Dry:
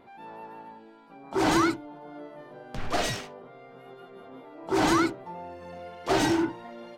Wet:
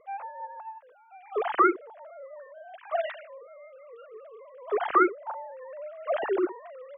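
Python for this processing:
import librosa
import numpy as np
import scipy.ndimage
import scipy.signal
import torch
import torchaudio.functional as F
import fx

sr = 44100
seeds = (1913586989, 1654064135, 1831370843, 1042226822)

y = fx.sine_speech(x, sr)
y = fx.high_shelf(y, sr, hz=2500.0, db=-8.5)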